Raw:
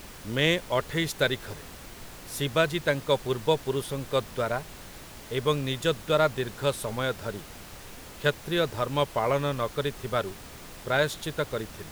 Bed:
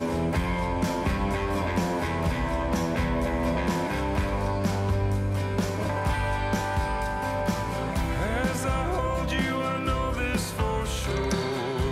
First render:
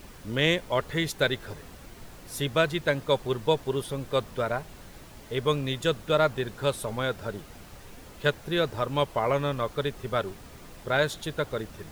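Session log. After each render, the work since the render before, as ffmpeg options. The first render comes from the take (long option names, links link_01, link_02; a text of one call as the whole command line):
ffmpeg -i in.wav -af "afftdn=noise_reduction=6:noise_floor=-45" out.wav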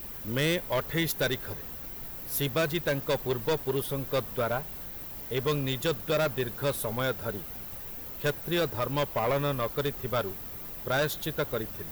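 ffmpeg -i in.wav -af "aexciter=amount=8:drive=5:freq=12000,asoftclip=type=hard:threshold=-22.5dB" out.wav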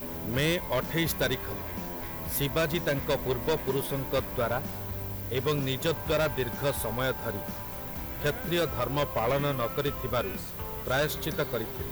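ffmpeg -i in.wav -i bed.wav -filter_complex "[1:a]volume=-12.5dB[link_01];[0:a][link_01]amix=inputs=2:normalize=0" out.wav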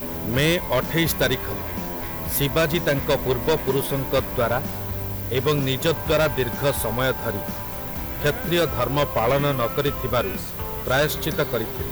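ffmpeg -i in.wav -af "volume=7dB" out.wav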